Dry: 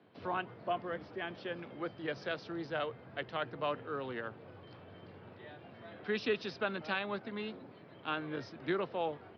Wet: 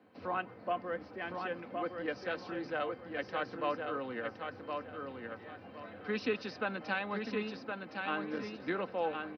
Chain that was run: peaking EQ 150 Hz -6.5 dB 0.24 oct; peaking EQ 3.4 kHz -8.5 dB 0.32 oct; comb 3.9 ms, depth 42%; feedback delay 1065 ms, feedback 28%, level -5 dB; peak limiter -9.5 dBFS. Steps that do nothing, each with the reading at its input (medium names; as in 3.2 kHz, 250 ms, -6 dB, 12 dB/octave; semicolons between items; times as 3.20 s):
peak limiter -9.5 dBFS: peak at its input -21.5 dBFS